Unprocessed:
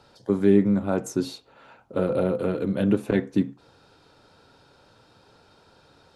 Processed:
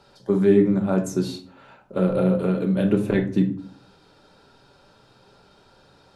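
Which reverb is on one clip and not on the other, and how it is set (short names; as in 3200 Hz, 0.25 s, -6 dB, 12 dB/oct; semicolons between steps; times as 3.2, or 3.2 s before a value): shoebox room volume 410 m³, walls furnished, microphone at 1.2 m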